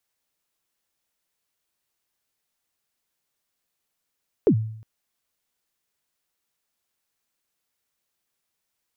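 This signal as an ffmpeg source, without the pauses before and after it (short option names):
-f lavfi -i "aevalsrc='0.282*pow(10,-3*t/0.67)*sin(2*PI*(490*0.078/log(110/490)*(exp(log(110/490)*min(t,0.078)/0.078)-1)+110*max(t-0.078,0)))':d=0.36:s=44100"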